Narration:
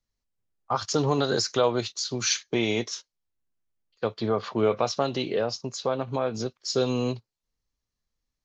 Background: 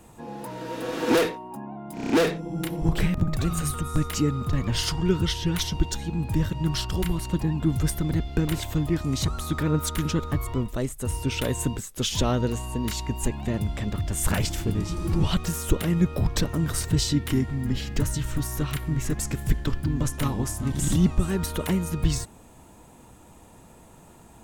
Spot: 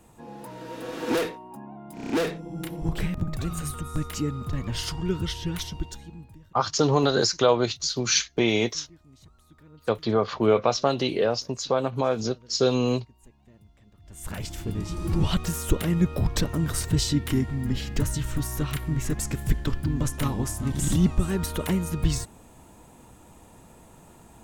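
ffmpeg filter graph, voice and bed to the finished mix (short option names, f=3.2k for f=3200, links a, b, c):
-filter_complex "[0:a]adelay=5850,volume=3dB[a];[1:a]volume=23dB,afade=t=out:st=5.49:d=0.9:silence=0.0668344,afade=t=in:st=14:d=1.17:silence=0.0421697[b];[a][b]amix=inputs=2:normalize=0"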